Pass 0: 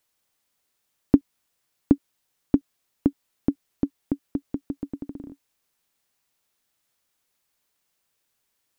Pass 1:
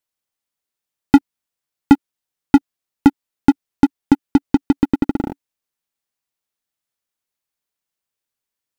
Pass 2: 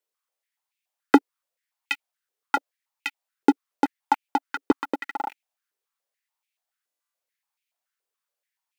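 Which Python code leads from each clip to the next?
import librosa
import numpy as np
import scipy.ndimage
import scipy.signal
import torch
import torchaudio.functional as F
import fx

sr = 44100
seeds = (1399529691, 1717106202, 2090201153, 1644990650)

y1 = fx.leveller(x, sr, passes=5)
y2 = fx.buffer_glitch(y1, sr, at_s=(6.84,), block=1024, repeats=14)
y2 = fx.filter_held_highpass(y2, sr, hz=7.0, low_hz=430.0, high_hz=2400.0)
y2 = F.gain(torch.from_numpy(y2), -3.5).numpy()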